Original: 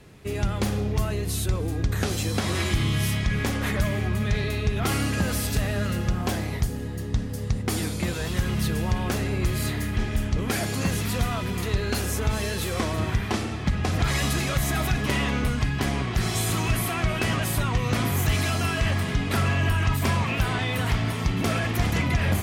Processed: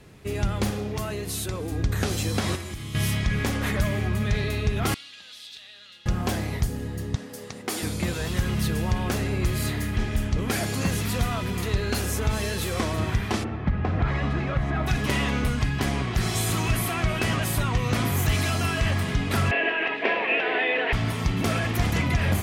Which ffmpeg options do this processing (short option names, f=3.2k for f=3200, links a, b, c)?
-filter_complex "[0:a]asettb=1/sr,asplit=3[a][b][c];[a]atrim=end=0.714[d];[b]atrim=start=0.71:end=1.72,asetpts=PTS-STARTPTS,afade=t=in:d=0.004:c=qsin,afade=t=out:st=1.006:d=0.004:c=qsin,highpass=f=190:p=1[e];[c]atrim=start=1.716[f];[d][e]acrossfade=d=0.004:c1=hsin:c2=qsin[g];[g][f]acrossfade=d=0.004:c1=qsin:c2=hsin,asettb=1/sr,asplit=3[h][i][j];[h]atrim=end=2.554[k];[i]atrim=start=2.55:end=2.95,asetpts=PTS-STARTPTS,afade=t=in:d=0.004:c=qsin,afade=t=out:st=0.396:d=0.004:c=qsin,acrossover=split=1300|6400[l][m][n];[l]acompressor=threshold=-35dB:ratio=4[o];[m]acompressor=threshold=-46dB:ratio=4[p];[n]acompressor=threshold=-46dB:ratio=4[q];[o][p][q]amix=inputs=3:normalize=0[r];[j]atrim=start=2.946[s];[k][r]acrossfade=d=0.004:c1=hsin:c2=qsin[t];[t][s]acrossfade=d=0.004:c1=qsin:c2=hsin,asettb=1/sr,asplit=3[u][v][w];[u]atrim=end=4.944[x];[v]atrim=start=4.94:end=6.06,asetpts=PTS-STARTPTS,afade=t=in:d=0.004:c=qsin,afade=t=out:st=1.116:d=0.004:c=qsin,bandpass=f=3.6k:t=q:w=5[y];[w]atrim=start=6.056[z];[x][y]acrossfade=d=0.004:c1=hsin:c2=qsin[aa];[aa][z]acrossfade=d=0.004:c1=qsin:c2=hsin,asettb=1/sr,asplit=3[ab][ac][ad];[ab]atrim=end=7.154[ae];[ac]atrim=start=7.15:end=7.83,asetpts=PTS-STARTPTS,afade=t=in:d=0.004:c=qsin,afade=t=out:st=0.676:d=0.004:c=qsin,highpass=330[af];[ad]atrim=start=7.826[ag];[ae][af]acrossfade=d=0.004:c1=hsin:c2=qsin[ah];[ah][ag]acrossfade=d=0.004:c1=qsin:c2=hsin,asplit=3[ai][aj][ak];[ai]afade=t=out:st=13.43:d=0.02[al];[aj]lowpass=1.8k,afade=t=in:st=13.43:d=0.02,afade=t=out:st=14.86:d=0.02[am];[ak]afade=t=in:st=14.86:d=0.02[an];[al][am][an]amix=inputs=3:normalize=0,asettb=1/sr,asplit=3[ao][ap][aq];[ao]atrim=end=19.514[ar];[ap]atrim=start=19.51:end=20.93,asetpts=PTS-STARTPTS,afade=t=in:d=0.004:c=qsin,afade=t=out:st=1.416:d=0.004:c=qsin,highpass=f=310:w=0.5412,highpass=f=310:w=1.3066,equalizer=f=320:t=q:w=4:g=4,equalizer=f=460:t=q:w=4:g=10,equalizer=f=680:t=q:w=4:g=6,equalizer=f=1.2k:t=q:w=4:g=-7,equalizer=f=1.8k:t=q:w=4:g=9,equalizer=f=2.6k:t=q:w=4:g=8,lowpass=f=3.3k:w=0.5412,lowpass=f=3.3k:w=1.3066[as];[aq]atrim=start=20.926[at];[ar][as]acrossfade=d=0.004:c1=hsin:c2=qsin[au];[au][at]acrossfade=d=0.004:c1=qsin:c2=hsin"